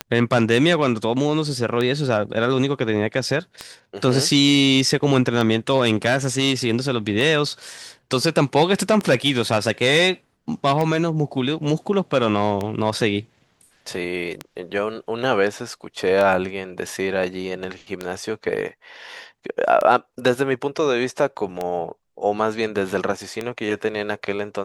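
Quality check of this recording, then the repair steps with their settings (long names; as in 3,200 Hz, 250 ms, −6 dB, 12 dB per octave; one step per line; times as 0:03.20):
scratch tick 33 1/3 rpm −11 dBFS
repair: click removal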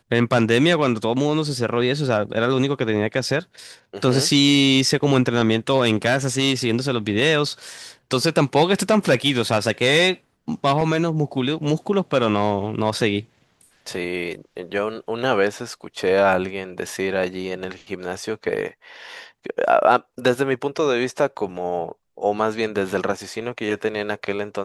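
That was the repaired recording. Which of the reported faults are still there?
none of them is left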